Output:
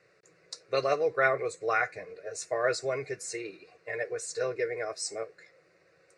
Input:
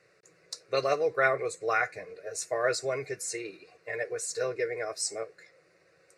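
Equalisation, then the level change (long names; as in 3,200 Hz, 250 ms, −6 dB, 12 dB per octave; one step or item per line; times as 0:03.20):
low-pass filter 10,000 Hz 24 dB per octave
high-shelf EQ 6,700 Hz −6 dB
0.0 dB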